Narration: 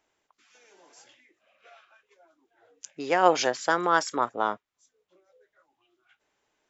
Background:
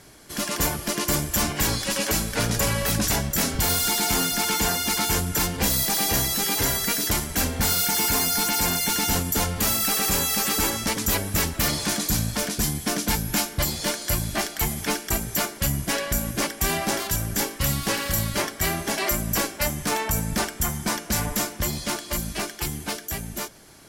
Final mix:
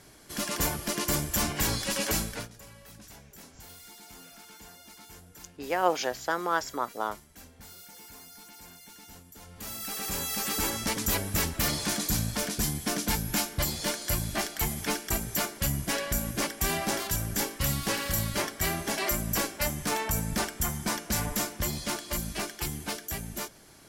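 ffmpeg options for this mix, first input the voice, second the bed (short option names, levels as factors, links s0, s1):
-filter_complex "[0:a]adelay=2600,volume=0.562[s0];[1:a]volume=7.5,afade=t=out:st=2.2:d=0.29:silence=0.0794328,afade=t=in:st=9.41:d=1.48:silence=0.0794328[s1];[s0][s1]amix=inputs=2:normalize=0"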